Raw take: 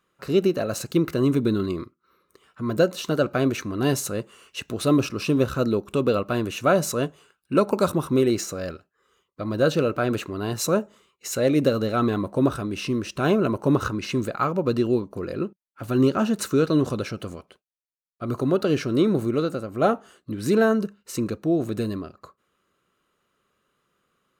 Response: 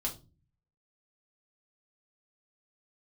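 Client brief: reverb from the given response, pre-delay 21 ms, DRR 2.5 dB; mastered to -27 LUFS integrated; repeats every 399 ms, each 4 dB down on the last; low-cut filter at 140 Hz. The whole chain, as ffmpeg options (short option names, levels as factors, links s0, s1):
-filter_complex "[0:a]highpass=140,aecho=1:1:399|798|1197|1596|1995|2394|2793|3192|3591:0.631|0.398|0.25|0.158|0.0994|0.0626|0.0394|0.0249|0.0157,asplit=2[s0][s1];[1:a]atrim=start_sample=2205,adelay=21[s2];[s1][s2]afir=irnorm=-1:irlink=0,volume=0.596[s3];[s0][s3]amix=inputs=2:normalize=0,volume=0.447"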